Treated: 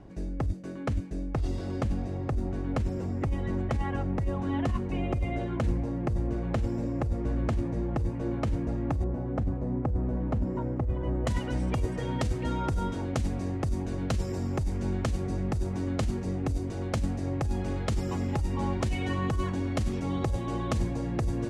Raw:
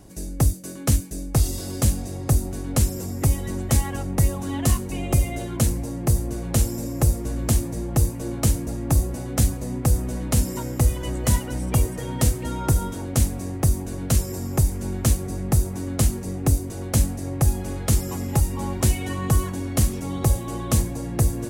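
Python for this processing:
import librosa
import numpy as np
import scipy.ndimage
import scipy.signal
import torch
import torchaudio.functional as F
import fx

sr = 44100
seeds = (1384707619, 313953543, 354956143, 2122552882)

y = fx.lowpass(x, sr, hz=fx.steps((0.0, 2300.0), (9.04, 1100.0), (11.27, 4100.0)), slope=12)
y = fx.over_compress(y, sr, threshold_db=-21.0, ratio=-1.0)
y = y * 10.0 ** (-4.0 / 20.0)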